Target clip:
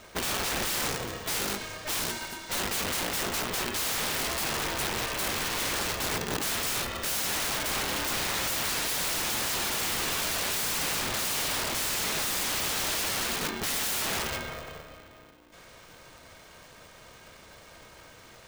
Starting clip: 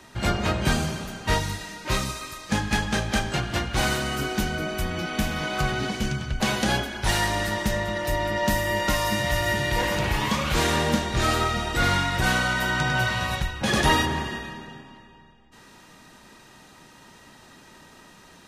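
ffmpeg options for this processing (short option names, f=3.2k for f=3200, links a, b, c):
-af "aeval=exprs='(mod(15.8*val(0)+1,2)-1)/15.8':c=same,aeval=exprs='val(0)*sgn(sin(2*PI*300*n/s))':c=same,volume=-1dB"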